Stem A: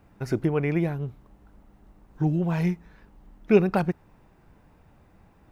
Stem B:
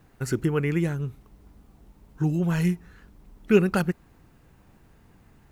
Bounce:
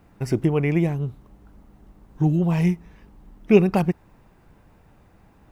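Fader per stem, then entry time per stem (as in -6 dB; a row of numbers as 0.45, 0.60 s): +2.0, -6.5 dB; 0.00, 0.00 s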